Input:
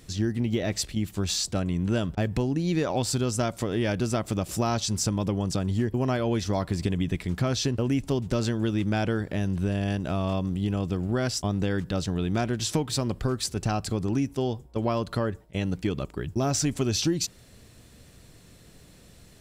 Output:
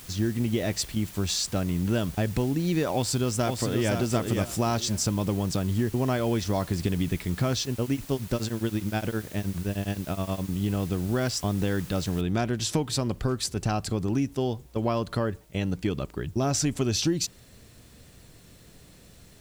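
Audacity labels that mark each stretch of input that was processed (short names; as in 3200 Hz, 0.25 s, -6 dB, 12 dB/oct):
2.940000	3.920000	echo throw 0.52 s, feedback 25%, level -5.5 dB
7.610000	10.490000	beating tremolo nulls at 9.6 Hz
12.210000	12.210000	noise floor step -47 dB -64 dB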